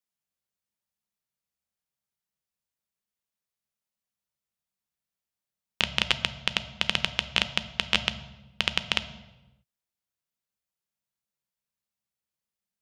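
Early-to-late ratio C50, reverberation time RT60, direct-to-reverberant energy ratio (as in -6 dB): 13.5 dB, 1.0 s, 10.0 dB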